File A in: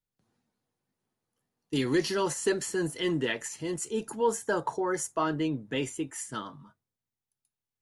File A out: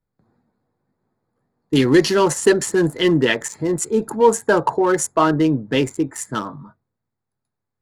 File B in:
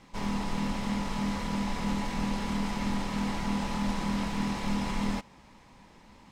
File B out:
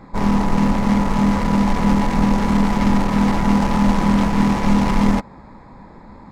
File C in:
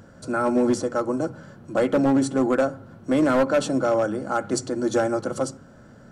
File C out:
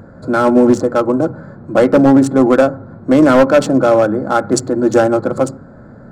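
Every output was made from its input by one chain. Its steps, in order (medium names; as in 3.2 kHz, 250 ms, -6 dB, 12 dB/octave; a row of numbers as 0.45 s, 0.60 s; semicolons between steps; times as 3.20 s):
local Wiener filter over 15 samples; peak normalisation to -3 dBFS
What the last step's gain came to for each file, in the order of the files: +13.0 dB, +15.0 dB, +11.0 dB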